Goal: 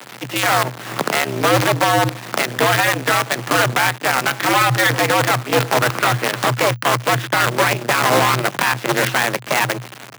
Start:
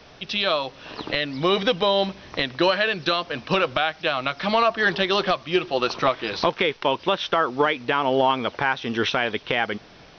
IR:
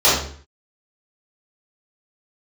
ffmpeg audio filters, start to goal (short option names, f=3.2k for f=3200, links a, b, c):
-af "lowpass=f=1.7k:w=0.5412,lowpass=f=1.7k:w=1.3066,aeval=exprs='(tanh(11.2*val(0)+0.8)-tanh(0.8))/11.2':c=same,crystalizer=i=9.5:c=0,aemphasis=mode=reproduction:type=50fm,acrusher=bits=5:dc=4:mix=0:aa=0.000001,tremolo=f=210:d=0.824,afreqshift=120,alimiter=level_in=25dB:limit=-1dB:release=50:level=0:latency=1,volume=-4dB"